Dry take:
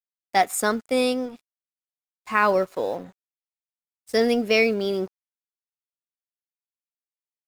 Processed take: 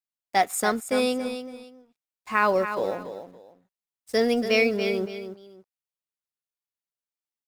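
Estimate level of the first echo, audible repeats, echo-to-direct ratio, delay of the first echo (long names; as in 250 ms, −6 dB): −9.5 dB, 2, −9.0 dB, 282 ms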